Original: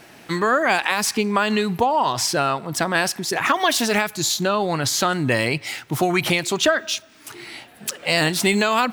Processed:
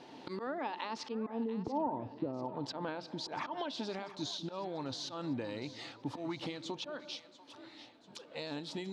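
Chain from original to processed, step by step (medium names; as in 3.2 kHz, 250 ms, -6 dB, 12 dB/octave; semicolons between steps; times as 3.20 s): Doppler pass-by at 1.84 s, 24 m/s, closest 1.8 m; low-pass 5.6 kHz 12 dB/octave; low-pass that closes with the level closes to 460 Hz, closed at -32 dBFS; graphic EQ 125/250/500/1000/2000/4000 Hz +5/+5/+10/+6/-3/+11 dB; slow attack 152 ms; compression 8:1, threshold -50 dBFS, peak gain reduction 31 dB; small resonant body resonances 280/890 Hz, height 9 dB; on a send: two-band feedback delay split 540 Hz, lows 195 ms, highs 690 ms, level -15 dB; on the sum: trim +12 dB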